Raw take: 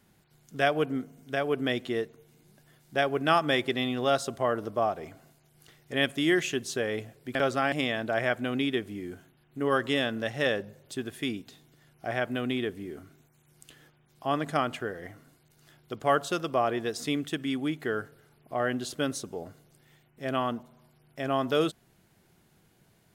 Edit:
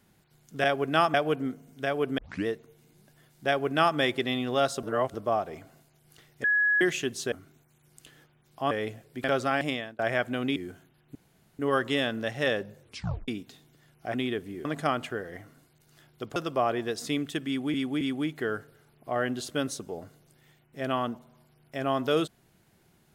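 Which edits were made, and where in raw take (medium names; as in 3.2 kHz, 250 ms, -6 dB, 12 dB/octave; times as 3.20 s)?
1.68 s: tape start 0.28 s
2.97–3.47 s: copy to 0.64 s
4.33–4.64 s: reverse
5.94–6.31 s: bleep 1.68 kHz -20.5 dBFS
7.76–8.10 s: fade out
8.67–8.99 s: delete
9.58 s: insert room tone 0.44 s
10.79 s: tape stop 0.48 s
12.13–12.45 s: delete
12.96–14.35 s: move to 6.82 s
16.06–16.34 s: delete
17.45–17.72 s: loop, 3 plays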